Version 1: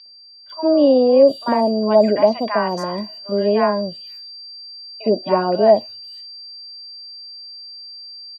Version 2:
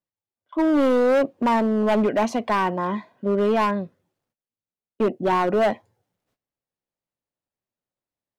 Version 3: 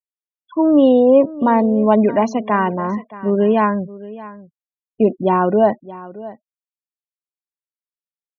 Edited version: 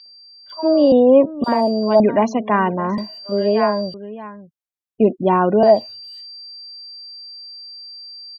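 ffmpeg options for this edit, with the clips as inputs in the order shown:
-filter_complex "[2:a]asplit=3[s0][s1][s2];[0:a]asplit=4[s3][s4][s5][s6];[s3]atrim=end=0.922[s7];[s0]atrim=start=0.918:end=1.442[s8];[s4]atrim=start=1.438:end=2.002[s9];[s1]atrim=start=1.998:end=2.982[s10];[s5]atrim=start=2.978:end=3.942[s11];[s2]atrim=start=3.938:end=5.632[s12];[s6]atrim=start=5.628[s13];[s7][s8]acrossfade=d=0.004:c1=hsin:c2=hsin[s14];[s14][s9]acrossfade=d=0.004:c1=hsin:c2=hsin[s15];[s15][s10]acrossfade=d=0.004:c1=hsin:c2=hsin[s16];[s16][s11]acrossfade=d=0.004:c1=hsin:c2=hsin[s17];[s17][s12]acrossfade=d=0.004:c1=hsin:c2=hsin[s18];[s18][s13]acrossfade=d=0.004:c1=hsin:c2=hsin"

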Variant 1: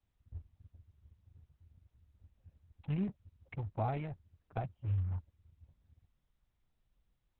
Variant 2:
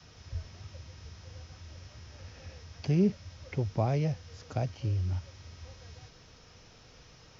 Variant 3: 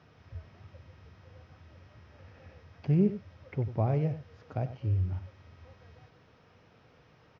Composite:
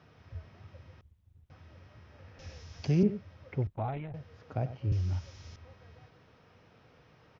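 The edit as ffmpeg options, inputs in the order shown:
-filter_complex "[0:a]asplit=2[s0][s1];[1:a]asplit=2[s2][s3];[2:a]asplit=5[s4][s5][s6][s7][s8];[s4]atrim=end=1.012[s9];[s0]atrim=start=1.008:end=1.502[s10];[s5]atrim=start=1.498:end=2.392[s11];[s2]atrim=start=2.388:end=3.032[s12];[s6]atrim=start=3.028:end=3.672[s13];[s1]atrim=start=3.668:end=4.142[s14];[s7]atrim=start=4.138:end=4.922[s15];[s3]atrim=start=4.918:end=5.562[s16];[s8]atrim=start=5.558[s17];[s9][s10]acrossfade=d=0.004:c1=hsin:c2=hsin[s18];[s18][s11]acrossfade=d=0.004:c1=hsin:c2=hsin[s19];[s19][s12]acrossfade=d=0.004:c1=hsin:c2=hsin[s20];[s20][s13]acrossfade=d=0.004:c1=hsin:c2=hsin[s21];[s21][s14]acrossfade=d=0.004:c1=hsin:c2=hsin[s22];[s22][s15]acrossfade=d=0.004:c1=hsin:c2=hsin[s23];[s23][s16]acrossfade=d=0.004:c1=hsin:c2=hsin[s24];[s24][s17]acrossfade=d=0.004:c1=hsin:c2=hsin"

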